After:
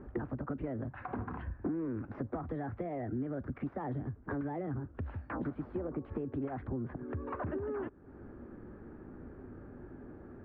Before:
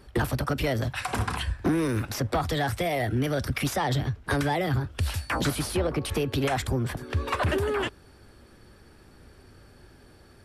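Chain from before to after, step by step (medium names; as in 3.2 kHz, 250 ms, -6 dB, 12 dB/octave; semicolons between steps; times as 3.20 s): peaking EQ 270 Hz +10.5 dB 1.4 oct; compression 3:1, threshold -39 dBFS, peak gain reduction 19.5 dB; low-pass 1.6 kHz 24 dB/octave; trim -1 dB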